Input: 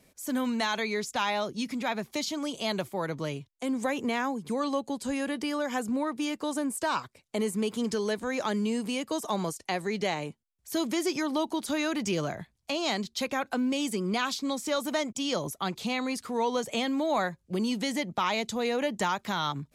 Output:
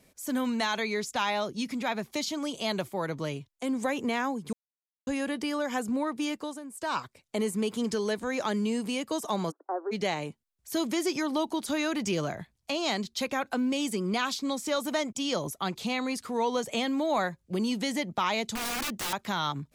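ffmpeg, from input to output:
-filter_complex "[0:a]asplit=3[a][b][c];[a]afade=t=out:st=9.5:d=0.02[d];[b]asuperpass=centerf=650:order=20:qfactor=0.54,afade=t=in:st=9.5:d=0.02,afade=t=out:st=9.91:d=0.02[e];[c]afade=t=in:st=9.91:d=0.02[f];[d][e][f]amix=inputs=3:normalize=0,asettb=1/sr,asplit=3[g][h][i];[g]atrim=end=18.554[j];[h]atrim=start=18.55:end=19.13,asetpts=PTS-STARTPTS,afade=t=in:d=0.004:c=qsin,afade=t=out:st=0.576:d=0.004:c=qsin,aeval=exprs='(mod(23.7*val(0)+1,2)-1)/23.7':c=same[k];[i]atrim=start=19.126[l];[j][k]acrossfade=d=0.004:c1=hsin:c2=qsin[m];[m][l]acrossfade=d=0.004:c1=qsin:c2=hsin,asplit=5[n][o][p][q][r];[n]atrim=end=4.53,asetpts=PTS-STARTPTS,afade=t=out:st=4.526:d=0.004:c=hsin[s];[o]atrim=start=4.53:end=5.07,asetpts=PTS-STARTPTS,volume=0[t];[p]atrim=start=5.07:end=6.6,asetpts=PTS-STARTPTS,afade=t=in:d=0.004:c=hsin,afade=t=out:st=1.25:d=0.28:silence=0.251189[u];[q]atrim=start=6.6:end=6.71,asetpts=PTS-STARTPTS,volume=-12dB[v];[r]atrim=start=6.71,asetpts=PTS-STARTPTS,afade=t=in:d=0.28:silence=0.251189[w];[s][t][u][v][w]concat=n=5:v=0:a=1"

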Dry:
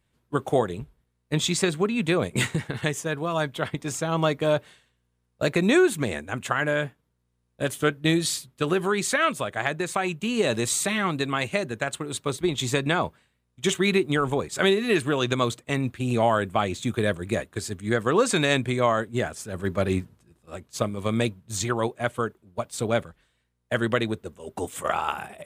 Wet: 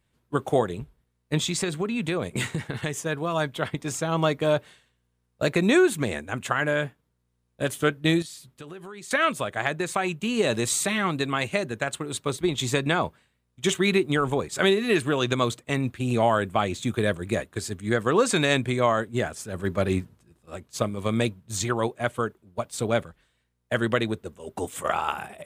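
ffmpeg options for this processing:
-filter_complex "[0:a]asettb=1/sr,asplit=3[a][b][c];[a]atrim=end=1.394[d];[b]atrim=start=1.39:end=2.96,asetpts=PTS-STARTPTS,afade=t=in:d=0.004:c=qsin,afade=t=out:st=1.566:d=0.004:c=qsin,acompressor=threshold=-24dB:ratio=2.5:attack=3.2:release=140:knee=1:detection=peak[e];[c]atrim=start=2.956[f];[d][e]acrossfade=d=0.004:c1=hsin:c2=qsin[g];[g][f]acrossfade=d=0.004:c1=qsin:c2=hsin,asettb=1/sr,asplit=3[h][i][j];[h]atrim=end=8.224[k];[i]atrim=start=8.22:end=9.11,asetpts=PTS-STARTPTS,afade=t=in:d=0.004:c=qsin,afade=t=out:st=0.886:d=0.004:c=qsin,acompressor=threshold=-41dB:ratio=4:attack=3.2:release=140:knee=1:detection=peak[l];[j]atrim=start=9.106[m];[k][l]acrossfade=d=0.004:c1=hsin:c2=qsin[n];[n][m]acrossfade=d=0.004:c1=qsin:c2=hsin"

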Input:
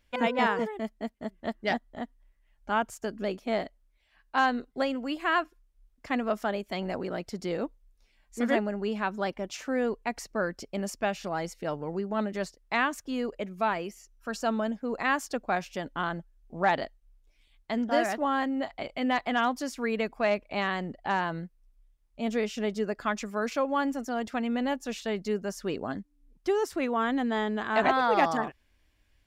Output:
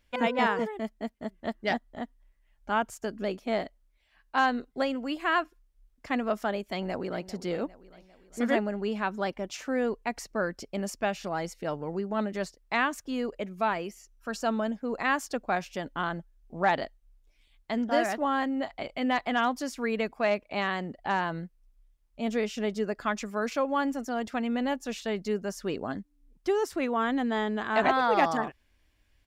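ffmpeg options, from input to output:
-filter_complex "[0:a]asplit=2[a][b];[b]afade=t=in:st=6.72:d=0.01,afade=t=out:st=7.24:d=0.01,aecho=0:1:400|800|1200|1600|2000:0.16788|0.0923342|0.0507838|0.0279311|0.0153621[c];[a][c]amix=inputs=2:normalize=0,asettb=1/sr,asplit=3[d][e][f];[d]atrim=end=20.114[g];[e]atrim=start=20.11:end=20.99,asetpts=PTS-STARTPTS,afade=t=in:d=0.004:c=qsin,afade=t=out:st=0.876:d=0.004:c=qsin,highpass=f=90:p=1[h];[f]atrim=start=20.986[i];[g][h]acrossfade=d=0.004:c1=hsin:c2=qsin[j];[j][i]acrossfade=d=0.004:c1=qsin:c2=hsin"

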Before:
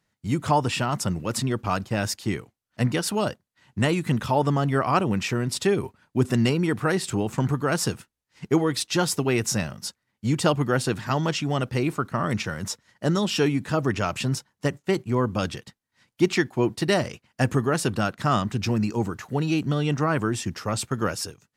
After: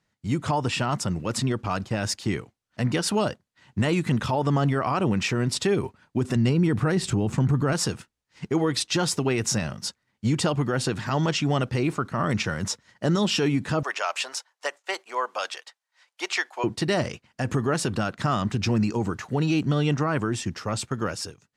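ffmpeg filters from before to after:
-filter_complex "[0:a]asettb=1/sr,asplit=3[a][b][c];[a]atrim=end=6.364[d];[b]atrim=start=6.36:end=7.73,asetpts=PTS-STARTPTS,afade=t=in:d=0.004:c=qsin,afade=t=out:st=1.366:d=0.004:c=qsin,lowshelf=f=280:g=10.5[e];[c]atrim=start=7.726[f];[d][e]acrossfade=d=0.004:c1=hsin:c2=qsin[g];[g][f]acrossfade=d=0.004:c1=qsin:c2=hsin,asettb=1/sr,asplit=3[h][i][j];[h]atrim=end=13.834[k];[i]atrim=start=13.83:end=16.64,asetpts=PTS-STARTPTS,afade=t=in:d=0.004:c=qsin,afade=t=out:st=2.806:d=0.004:c=qsin,highpass=f=610:w=0.5412,highpass=f=610:w=1.3066[l];[j]atrim=start=16.636[m];[k][l]acrossfade=d=0.004:c1=hsin:c2=qsin[n];[n][m]acrossfade=d=0.004:c1=qsin:c2=hsin,lowpass=8.7k,dynaudnorm=f=170:g=21:m=3dB,alimiter=limit=-14.5dB:level=0:latency=1:release=69"

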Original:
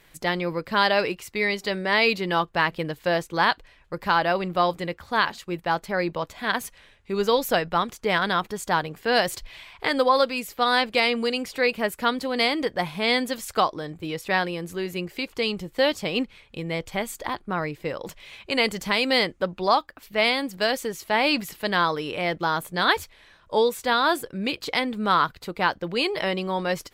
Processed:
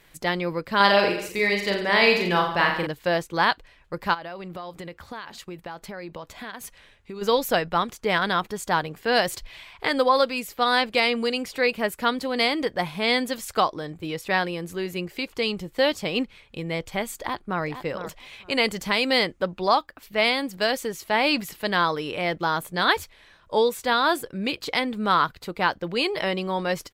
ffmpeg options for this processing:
-filter_complex "[0:a]asettb=1/sr,asplit=3[a][b][c];[a]atrim=end=0.764[d];[b]atrim=start=0.76:end=2.87,asetpts=PTS-STARTPTS,afade=t=in:d=0.004:c=qsin,afade=t=out:st=2.106:d=0.004:c=qsin,aecho=1:1:40|86|138.9|199.7|269.7:0.631|0.398|0.251|0.158|0.1,atrim=end_sample=93051[e];[c]atrim=start=2.866[f];[d][e]acrossfade=d=0.004:c1=hsin:c2=qsin[g];[g][f]acrossfade=d=0.004:c1=qsin:c2=hsin,asplit=3[h][i][j];[h]afade=t=out:st=4.13:d=0.02[k];[i]acompressor=threshold=-32dB:ratio=10:attack=3.2:release=140:knee=1:detection=peak,afade=t=in:st=4.13:d=0.02,afade=t=out:st=7.21:d=0.02[l];[j]afade=t=in:st=7.21:d=0.02[m];[k][l][m]amix=inputs=3:normalize=0,asplit=2[n][o];[o]afade=t=in:st=17.2:d=0.01,afade=t=out:st=17.62:d=0.01,aecho=0:1:460|920:0.316228|0.0474342[p];[n][p]amix=inputs=2:normalize=0"

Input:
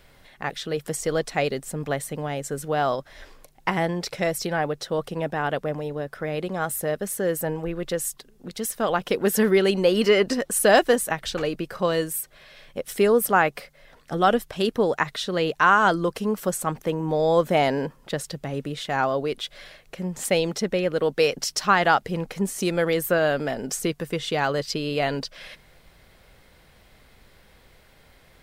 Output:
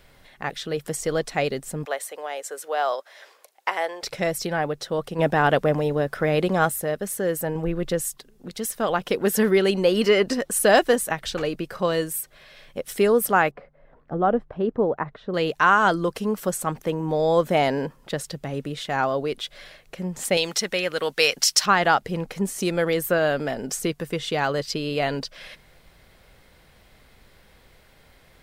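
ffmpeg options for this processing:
-filter_complex "[0:a]asettb=1/sr,asplit=3[a][b][c];[a]atrim=end=1.854[d];[b]atrim=start=1.85:end=4.03,asetpts=PTS-STARTPTS,afade=t=in:d=0.004:c=qsin,afade=t=out:st=2.176:d=0.004:c=qsin,highpass=f=470:w=0.5412,highpass=f=470:w=1.3066[e];[c]atrim=start=4.026[f];[d][e]acrossfade=d=0.004:c1=hsin:c2=qsin[g];[g][f]acrossfade=d=0.004:c1=qsin:c2=hsin,asplit=3[h][i][j];[h]afade=t=out:st=5.18:d=0.02[k];[i]acontrast=82,afade=t=in:st=5.18:d=0.02,afade=t=out:st=6.68:d=0.02[l];[j]afade=t=in:st=6.68:d=0.02[m];[k][l][m]amix=inputs=3:normalize=0,asettb=1/sr,asplit=3[n][o][p];[n]atrim=end=7.554[q];[o]atrim=start=7.55:end=8.01,asetpts=PTS-STARTPTS,afade=t=in:d=0.004:c=qsin,afade=t=out:st=0.456:d=0.004:c=qsin,lowshelf=f=320:g=6.5[r];[p]atrim=start=8.006[s];[q][r]acrossfade=d=0.004:c1=hsin:c2=qsin[t];[t][s]acrossfade=d=0.004:c1=qsin:c2=hsin,asettb=1/sr,asplit=3[u][v][w];[u]atrim=end=13.514[x];[v]atrim=start=13.51:end=15.34,asetpts=PTS-STARTPTS,afade=t=in:d=0.004:c=qsin,afade=t=out:st=1.826:d=0.004:c=qsin,lowpass=1k[y];[w]atrim=start=15.336[z];[x][y]acrossfade=d=0.004:c1=hsin:c2=qsin[aa];[aa][z]acrossfade=d=0.004:c1=qsin:c2=hsin,asettb=1/sr,asplit=3[ab][ac][ad];[ab]atrim=end=20.374[ae];[ac]atrim=start=20.37:end=21.66,asetpts=PTS-STARTPTS,afade=t=in:d=0.004:c=qsin,afade=t=out:st=1.286:d=0.004:c=qsin,tiltshelf=f=770:g=-8.5[af];[ad]atrim=start=21.656[ag];[ae][af]acrossfade=d=0.004:c1=hsin:c2=qsin[ah];[ah][ag]acrossfade=d=0.004:c1=qsin:c2=hsin"

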